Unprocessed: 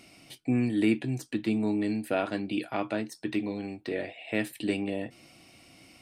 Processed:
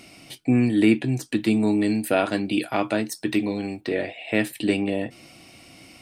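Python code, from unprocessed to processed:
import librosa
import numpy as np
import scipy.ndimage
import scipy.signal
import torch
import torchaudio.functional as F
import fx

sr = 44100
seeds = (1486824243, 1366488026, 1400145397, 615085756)

y = fx.high_shelf(x, sr, hz=6700.0, db=10.0, at=(1.32, 3.81))
y = y * librosa.db_to_amplitude(7.0)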